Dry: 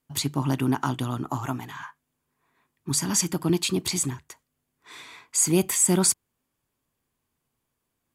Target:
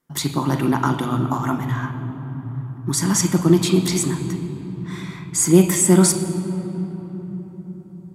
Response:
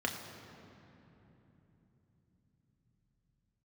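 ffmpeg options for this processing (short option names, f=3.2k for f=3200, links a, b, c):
-filter_complex "[0:a]asplit=2[a][b];[1:a]atrim=start_sample=2205,asetrate=31311,aresample=44100[c];[b][c]afir=irnorm=-1:irlink=0,volume=-3dB[d];[a][d]amix=inputs=2:normalize=0,volume=-1dB"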